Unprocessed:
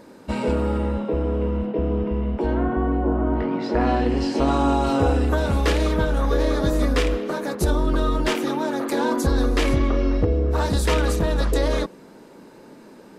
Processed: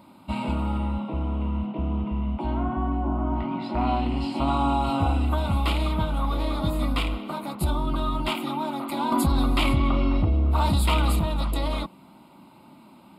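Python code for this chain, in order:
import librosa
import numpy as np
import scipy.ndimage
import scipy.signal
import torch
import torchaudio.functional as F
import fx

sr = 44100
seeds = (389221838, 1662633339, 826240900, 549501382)

y = scipy.signal.sosfilt(scipy.signal.butter(2, 58.0, 'highpass', fs=sr, output='sos'), x)
y = fx.fixed_phaser(y, sr, hz=1700.0, stages=6)
y = fx.env_flatten(y, sr, amount_pct=70, at=(9.12, 11.2))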